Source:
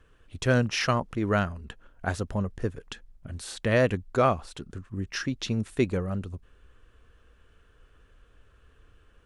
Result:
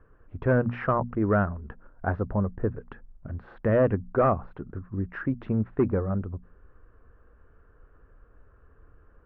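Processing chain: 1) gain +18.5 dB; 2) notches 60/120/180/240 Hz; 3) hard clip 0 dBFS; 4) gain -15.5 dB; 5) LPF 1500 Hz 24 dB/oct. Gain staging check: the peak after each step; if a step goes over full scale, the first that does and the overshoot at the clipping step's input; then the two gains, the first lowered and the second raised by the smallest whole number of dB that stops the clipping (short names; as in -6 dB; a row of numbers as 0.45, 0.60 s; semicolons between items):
+9.5, +9.0, 0.0, -15.5, -14.0 dBFS; step 1, 9.0 dB; step 1 +9.5 dB, step 4 -6.5 dB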